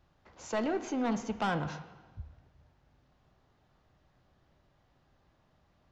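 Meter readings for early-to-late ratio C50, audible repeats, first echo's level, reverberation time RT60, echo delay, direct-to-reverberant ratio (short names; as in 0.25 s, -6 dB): 11.5 dB, none, none, 1.3 s, none, 9.5 dB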